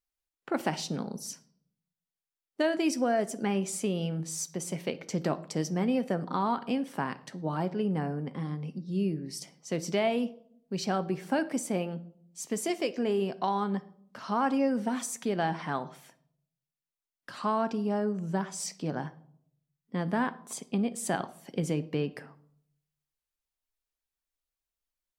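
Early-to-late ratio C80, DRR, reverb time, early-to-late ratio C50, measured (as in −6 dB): 21.5 dB, 11.5 dB, 0.65 s, 17.5 dB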